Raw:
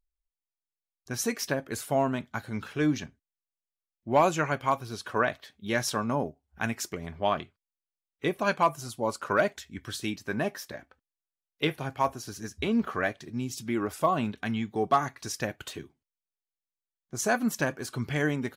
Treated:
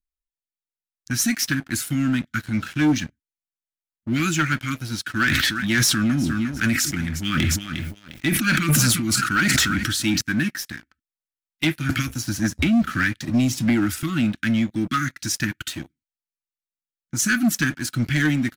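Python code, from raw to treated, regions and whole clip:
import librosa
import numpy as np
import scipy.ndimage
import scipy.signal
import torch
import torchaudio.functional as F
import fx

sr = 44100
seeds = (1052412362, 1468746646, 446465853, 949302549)

y = fx.chain(x, sr, fx.echo_feedback(ms=355, feedback_pct=25, wet_db=-18.0),
    fx.sustainer(db_per_s=27.0), at=(5.15, 10.21))
y = fx.chain(y, sr, fx.highpass(hz=51.0, slope=24),
    fx.low_shelf(hz=110.0, db=6.5),
    fx.band_squash(depth_pct=100), at=(11.89, 14.03))
y = scipy.signal.sosfilt(scipy.signal.cheby1(5, 1.0, [330.0, 1300.0], 'bandstop', fs=sr, output='sos'), y)
y = fx.leveller(y, sr, passes=3)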